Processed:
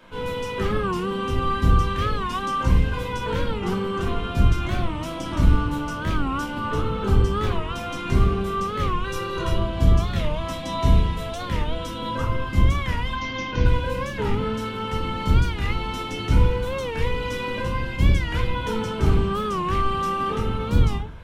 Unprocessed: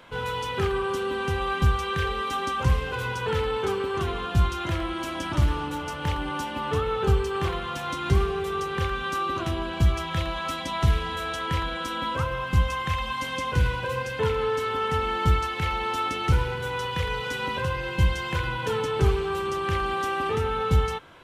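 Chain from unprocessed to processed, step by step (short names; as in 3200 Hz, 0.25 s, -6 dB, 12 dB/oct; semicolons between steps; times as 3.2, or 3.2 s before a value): octaver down 1 oct, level -1 dB; 9.04–9.57 comb 2.1 ms, depth 96%; 13.13–13.66 steep low-pass 6500 Hz 96 dB/oct; shoebox room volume 270 m³, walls furnished, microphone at 2.7 m; record warp 45 rpm, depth 160 cents; gain -4.5 dB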